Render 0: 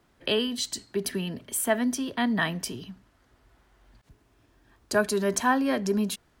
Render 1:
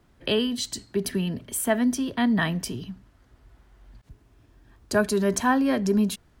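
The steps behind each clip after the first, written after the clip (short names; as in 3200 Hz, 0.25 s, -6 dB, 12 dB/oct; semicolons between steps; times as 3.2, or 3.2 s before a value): low shelf 210 Hz +9.5 dB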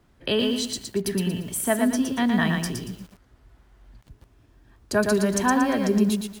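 lo-fi delay 0.116 s, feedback 35%, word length 8-bit, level -4 dB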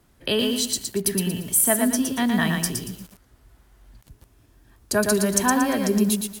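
bell 13000 Hz +12.5 dB 1.5 oct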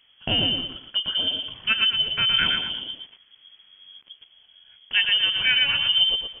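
inverted band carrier 3300 Hz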